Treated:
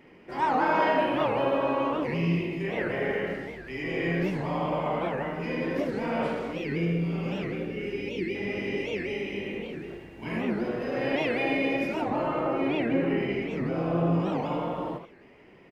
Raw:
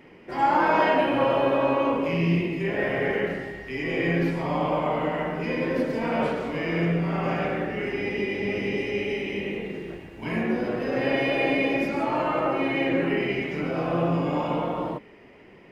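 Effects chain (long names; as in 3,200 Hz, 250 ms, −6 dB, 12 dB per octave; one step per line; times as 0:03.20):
0:06.53–0:08.35: gain on a spectral selection 550–2,100 Hz −10 dB
0:12.02–0:14.20: tilt shelving filter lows +3.5 dB, about 770 Hz
single-tap delay 78 ms −8.5 dB
wow of a warped record 78 rpm, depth 250 cents
level −4 dB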